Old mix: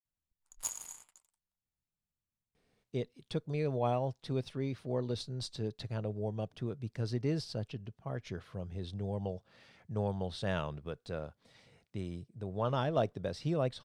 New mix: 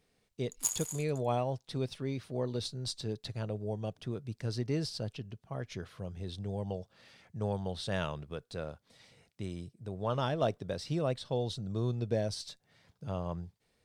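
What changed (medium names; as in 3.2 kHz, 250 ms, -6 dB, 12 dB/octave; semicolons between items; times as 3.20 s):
speech: entry -2.55 s; master: add treble shelf 4.1 kHz +7.5 dB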